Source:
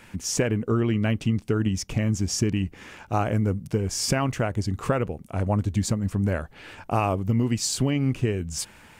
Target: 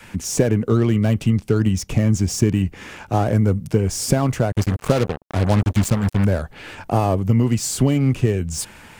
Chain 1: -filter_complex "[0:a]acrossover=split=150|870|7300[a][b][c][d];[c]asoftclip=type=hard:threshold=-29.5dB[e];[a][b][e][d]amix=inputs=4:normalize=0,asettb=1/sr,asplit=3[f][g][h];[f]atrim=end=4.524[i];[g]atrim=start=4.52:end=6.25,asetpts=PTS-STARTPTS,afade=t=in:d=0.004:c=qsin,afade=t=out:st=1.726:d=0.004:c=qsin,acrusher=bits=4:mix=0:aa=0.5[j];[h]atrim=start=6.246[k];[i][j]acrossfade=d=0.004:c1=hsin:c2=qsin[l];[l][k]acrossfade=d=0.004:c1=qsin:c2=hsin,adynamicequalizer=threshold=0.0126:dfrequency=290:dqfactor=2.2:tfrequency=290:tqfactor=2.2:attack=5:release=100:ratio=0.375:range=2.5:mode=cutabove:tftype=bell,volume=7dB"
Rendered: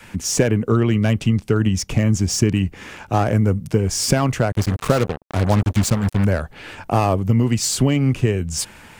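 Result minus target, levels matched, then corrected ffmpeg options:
hard clip: distortion -7 dB
-filter_complex "[0:a]acrossover=split=150|870|7300[a][b][c][d];[c]asoftclip=type=hard:threshold=-39.5dB[e];[a][b][e][d]amix=inputs=4:normalize=0,asettb=1/sr,asplit=3[f][g][h];[f]atrim=end=4.524[i];[g]atrim=start=4.52:end=6.25,asetpts=PTS-STARTPTS,afade=t=in:d=0.004:c=qsin,afade=t=out:st=1.726:d=0.004:c=qsin,acrusher=bits=4:mix=0:aa=0.5[j];[h]atrim=start=6.246[k];[i][j]acrossfade=d=0.004:c1=hsin:c2=qsin[l];[l][k]acrossfade=d=0.004:c1=qsin:c2=hsin,adynamicequalizer=threshold=0.0126:dfrequency=290:dqfactor=2.2:tfrequency=290:tqfactor=2.2:attack=5:release=100:ratio=0.375:range=2.5:mode=cutabove:tftype=bell,volume=7dB"

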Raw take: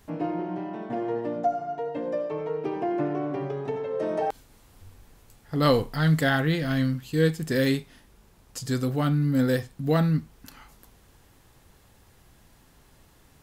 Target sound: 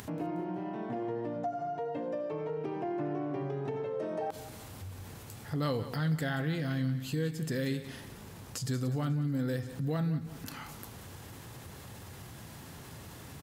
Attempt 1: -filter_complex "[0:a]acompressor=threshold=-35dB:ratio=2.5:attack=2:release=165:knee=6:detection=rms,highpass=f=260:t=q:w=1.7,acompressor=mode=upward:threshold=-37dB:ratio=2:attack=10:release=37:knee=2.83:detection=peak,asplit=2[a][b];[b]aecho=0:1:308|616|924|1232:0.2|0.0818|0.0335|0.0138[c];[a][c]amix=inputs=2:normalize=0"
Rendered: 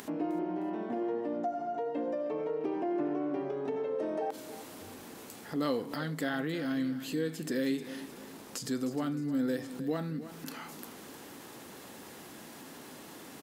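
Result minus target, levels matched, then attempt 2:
echo 0.127 s late; 125 Hz band -10.5 dB
-filter_complex "[0:a]acompressor=threshold=-35dB:ratio=2.5:attack=2:release=165:knee=6:detection=rms,highpass=f=100:t=q:w=1.7,acompressor=mode=upward:threshold=-37dB:ratio=2:attack=10:release=37:knee=2.83:detection=peak,asplit=2[a][b];[b]aecho=0:1:181|362|543|724:0.2|0.0818|0.0335|0.0138[c];[a][c]amix=inputs=2:normalize=0"

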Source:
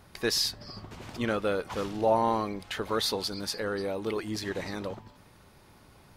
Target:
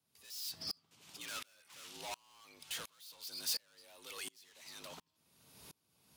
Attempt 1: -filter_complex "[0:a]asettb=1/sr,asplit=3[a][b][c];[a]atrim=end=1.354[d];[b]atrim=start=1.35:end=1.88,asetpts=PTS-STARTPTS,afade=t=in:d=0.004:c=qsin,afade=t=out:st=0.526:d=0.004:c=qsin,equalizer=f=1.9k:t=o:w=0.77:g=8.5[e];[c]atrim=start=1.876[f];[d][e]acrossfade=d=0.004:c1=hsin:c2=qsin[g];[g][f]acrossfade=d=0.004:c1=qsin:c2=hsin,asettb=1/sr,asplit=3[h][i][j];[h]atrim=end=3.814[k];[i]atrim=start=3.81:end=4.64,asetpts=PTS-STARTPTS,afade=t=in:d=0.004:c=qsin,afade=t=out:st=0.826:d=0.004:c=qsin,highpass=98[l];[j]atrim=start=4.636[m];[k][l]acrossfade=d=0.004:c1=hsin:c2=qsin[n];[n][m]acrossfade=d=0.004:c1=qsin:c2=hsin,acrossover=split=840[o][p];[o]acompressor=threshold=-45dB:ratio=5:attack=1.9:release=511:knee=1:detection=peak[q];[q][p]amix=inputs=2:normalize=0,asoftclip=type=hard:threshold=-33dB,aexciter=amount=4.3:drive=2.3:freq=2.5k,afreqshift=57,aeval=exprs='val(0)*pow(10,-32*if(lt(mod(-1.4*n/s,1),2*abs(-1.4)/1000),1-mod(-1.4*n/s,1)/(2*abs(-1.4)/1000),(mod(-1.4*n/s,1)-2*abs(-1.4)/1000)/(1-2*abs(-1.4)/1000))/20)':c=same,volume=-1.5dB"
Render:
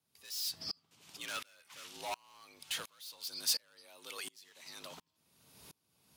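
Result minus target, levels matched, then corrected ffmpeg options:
hard clip: distortion -4 dB
-filter_complex "[0:a]asettb=1/sr,asplit=3[a][b][c];[a]atrim=end=1.354[d];[b]atrim=start=1.35:end=1.88,asetpts=PTS-STARTPTS,afade=t=in:d=0.004:c=qsin,afade=t=out:st=0.526:d=0.004:c=qsin,equalizer=f=1.9k:t=o:w=0.77:g=8.5[e];[c]atrim=start=1.876[f];[d][e]acrossfade=d=0.004:c1=hsin:c2=qsin[g];[g][f]acrossfade=d=0.004:c1=qsin:c2=hsin,asettb=1/sr,asplit=3[h][i][j];[h]atrim=end=3.814[k];[i]atrim=start=3.81:end=4.64,asetpts=PTS-STARTPTS,afade=t=in:d=0.004:c=qsin,afade=t=out:st=0.826:d=0.004:c=qsin,highpass=98[l];[j]atrim=start=4.636[m];[k][l]acrossfade=d=0.004:c1=hsin:c2=qsin[n];[n][m]acrossfade=d=0.004:c1=qsin:c2=hsin,acrossover=split=840[o][p];[o]acompressor=threshold=-45dB:ratio=5:attack=1.9:release=511:knee=1:detection=peak[q];[q][p]amix=inputs=2:normalize=0,asoftclip=type=hard:threshold=-40dB,aexciter=amount=4.3:drive=2.3:freq=2.5k,afreqshift=57,aeval=exprs='val(0)*pow(10,-32*if(lt(mod(-1.4*n/s,1),2*abs(-1.4)/1000),1-mod(-1.4*n/s,1)/(2*abs(-1.4)/1000),(mod(-1.4*n/s,1)-2*abs(-1.4)/1000)/(1-2*abs(-1.4)/1000))/20)':c=same,volume=-1.5dB"

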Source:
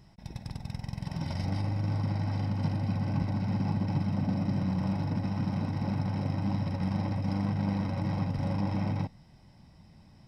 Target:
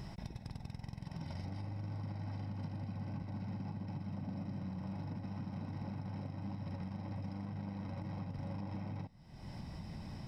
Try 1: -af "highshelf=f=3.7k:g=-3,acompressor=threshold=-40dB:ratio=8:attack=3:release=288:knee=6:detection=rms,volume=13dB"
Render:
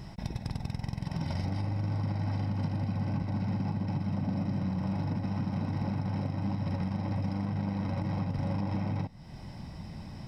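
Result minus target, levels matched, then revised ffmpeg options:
compressor: peak gain reduction -10.5 dB
-af "highshelf=f=3.7k:g=-3,acompressor=threshold=-52dB:ratio=8:attack=3:release=288:knee=6:detection=rms,volume=13dB"

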